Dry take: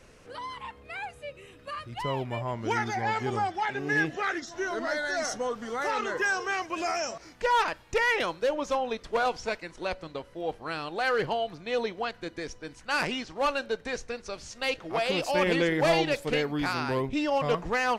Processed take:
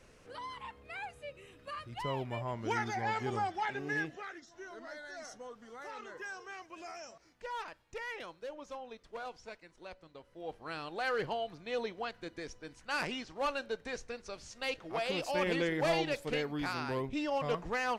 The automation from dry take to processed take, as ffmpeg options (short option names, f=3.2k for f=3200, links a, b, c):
-af "volume=4dB,afade=t=out:st=3.71:d=0.58:silence=0.281838,afade=t=in:st=10.13:d=0.64:silence=0.334965"